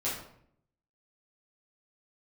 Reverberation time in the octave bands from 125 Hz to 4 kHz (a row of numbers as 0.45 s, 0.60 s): 0.95 s, 0.85 s, 0.70 s, 0.60 s, 0.55 s, 0.45 s